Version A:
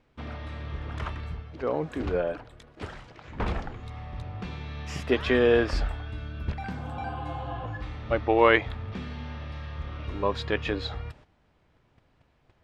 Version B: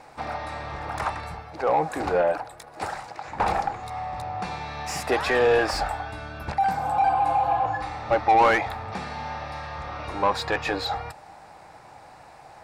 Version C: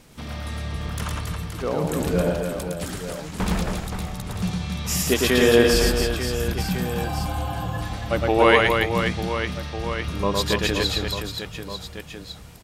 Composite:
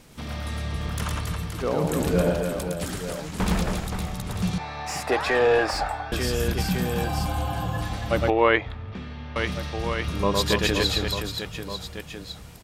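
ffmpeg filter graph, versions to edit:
-filter_complex "[2:a]asplit=3[a][b][c];[a]atrim=end=4.582[d];[1:a]atrim=start=4.578:end=6.122[e];[b]atrim=start=6.118:end=8.302[f];[0:a]atrim=start=8.298:end=9.362[g];[c]atrim=start=9.358[h];[d][e]acrossfade=d=0.004:c1=hsin:c2=hsin[i];[i][f]acrossfade=d=0.004:c1=hsin:c2=hsin[j];[j][g]acrossfade=d=0.004:c1=hsin:c2=hsin[k];[k][h]acrossfade=d=0.004:c1=hsin:c2=hsin"

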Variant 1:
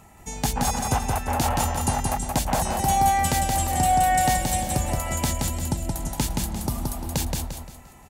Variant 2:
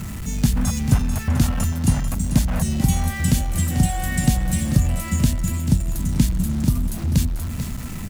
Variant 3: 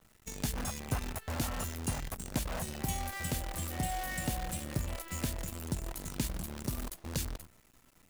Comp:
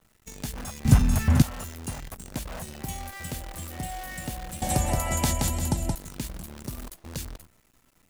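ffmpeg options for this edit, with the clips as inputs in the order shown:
-filter_complex "[2:a]asplit=3[a][b][c];[a]atrim=end=0.852[d];[1:a]atrim=start=0.848:end=1.422[e];[b]atrim=start=1.418:end=4.622[f];[0:a]atrim=start=4.618:end=5.952[g];[c]atrim=start=5.948[h];[d][e]acrossfade=d=0.004:c1=hsin:c2=hsin[i];[i][f]acrossfade=d=0.004:c1=hsin:c2=hsin[j];[j][g]acrossfade=d=0.004:c1=hsin:c2=hsin[k];[k][h]acrossfade=d=0.004:c1=hsin:c2=hsin"

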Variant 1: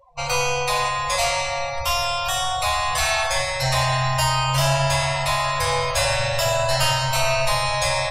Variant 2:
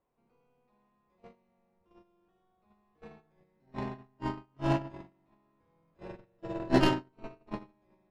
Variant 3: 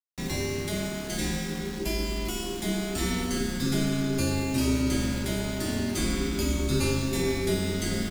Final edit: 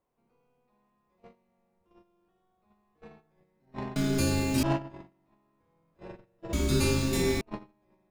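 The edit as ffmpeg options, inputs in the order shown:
-filter_complex "[2:a]asplit=2[a][b];[1:a]asplit=3[c][d][e];[c]atrim=end=3.962[f];[a]atrim=start=3.958:end=4.632[g];[d]atrim=start=4.628:end=6.532[h];[b]atrim=start=6.528:end=7.412[i];[e]atrim=start=7.408[j];[f][g]acrossfade=d=0.004:c1=hsin:c2=hsin[k];[k][h]acrossfade=d=0.004:c1=hsin:c2=hsin[l];[l][i]acrossfade=d=0.004:c1=hsin:c2=hsin[m];[m][j]acrossfade=d=0.004:c1=hsin:c2=hsin"

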